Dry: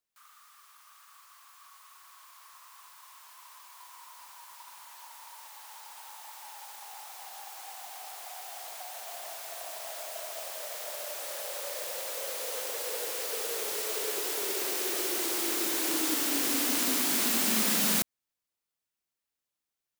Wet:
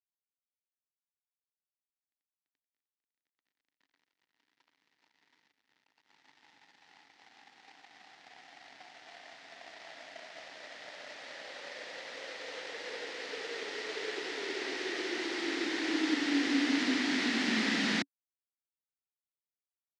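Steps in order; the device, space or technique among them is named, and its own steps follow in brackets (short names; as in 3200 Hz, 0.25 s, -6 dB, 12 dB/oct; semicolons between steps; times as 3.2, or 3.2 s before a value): 5.52–6.1 high shelf 3600 Hz -3 dB; blown loudspeaker (crossover distortion -42.5 dBFS; speaker cabinet 150–4800 Hz, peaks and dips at 280 Hz +9 dB, 580 Hz -5 dB, 1100 Hz -5 dB, 1900 Hz +9 dB)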